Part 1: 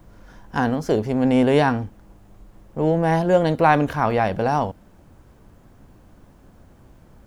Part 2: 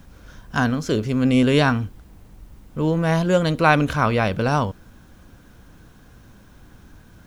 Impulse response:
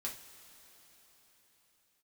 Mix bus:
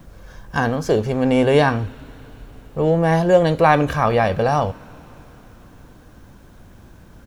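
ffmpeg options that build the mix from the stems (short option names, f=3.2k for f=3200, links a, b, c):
-filter_complex "[0:a]volume=2dB,asplit=2[a][b];[1:a]adelay=1.6,volume=-3dB,asplit=2[c][d];[d]volume=-7.5dB[e];[b]apad=whole_len=320489[f];[c][f]sidechaincompress=threshold=-21dB:ratio=8:attack=16:release=148[g];[2:a]atrim=start_sample=2205[h];[e][h]afir=irnorm=-1:irlink=0[i];[a][g][i]amix=inputs=3:normalize=0"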